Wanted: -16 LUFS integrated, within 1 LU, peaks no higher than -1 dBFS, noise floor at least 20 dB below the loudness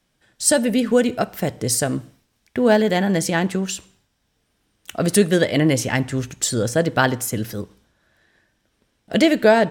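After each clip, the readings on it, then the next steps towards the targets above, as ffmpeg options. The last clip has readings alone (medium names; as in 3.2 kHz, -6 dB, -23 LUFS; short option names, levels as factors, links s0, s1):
loudness -19.5 LUFS; peak level -3.0 dBFS; loudness target -16.0 LUFS
-> -af "volume=1.5,alimiter=limit=0.891:level=0:latency=1"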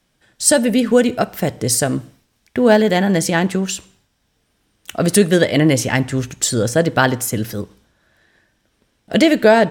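loudness -16.5 LUFS; peak level -1.0 dBFS; noise floor -66 dBFS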